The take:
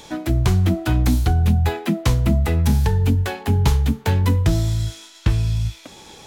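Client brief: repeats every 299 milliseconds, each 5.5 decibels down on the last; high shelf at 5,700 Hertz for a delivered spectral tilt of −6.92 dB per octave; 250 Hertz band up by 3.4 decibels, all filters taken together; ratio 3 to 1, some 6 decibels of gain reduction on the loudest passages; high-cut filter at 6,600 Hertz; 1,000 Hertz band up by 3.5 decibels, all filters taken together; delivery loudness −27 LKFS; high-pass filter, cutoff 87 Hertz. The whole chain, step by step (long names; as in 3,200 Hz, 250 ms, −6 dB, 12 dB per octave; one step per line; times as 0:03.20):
high-pass filter 87 Hz
low-pass filter 6,600 Hz
parametric band 250 Hz +4.5 dB
parametric band 1,000 Hz +4.5 dB
high-shelf EQ 5,700 Hz −8 dB
downward compressor 3 to 1, threshold −20 dBFS
repeating echo 299 ms, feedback 53%, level −5.5 dB
level −3.5 dB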